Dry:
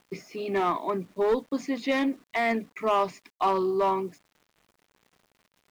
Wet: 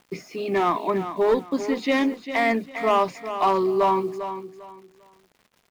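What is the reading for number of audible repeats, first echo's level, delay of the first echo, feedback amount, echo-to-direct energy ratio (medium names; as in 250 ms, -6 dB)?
3, -10.5 dB, 399 ms, 25%, -10.0 dB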